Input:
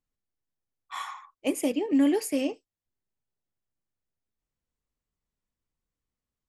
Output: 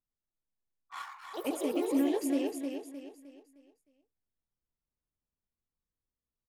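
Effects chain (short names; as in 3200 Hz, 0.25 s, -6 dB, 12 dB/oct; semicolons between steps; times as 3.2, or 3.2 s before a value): Wiener smoothing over 15 samples; on a send: feedback echo 0.308 s, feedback 39%, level -5 dB; on the sum: echoes that change speed 0.208 s, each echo +4 st, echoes 3, each echo -6 dB; gain -7 dB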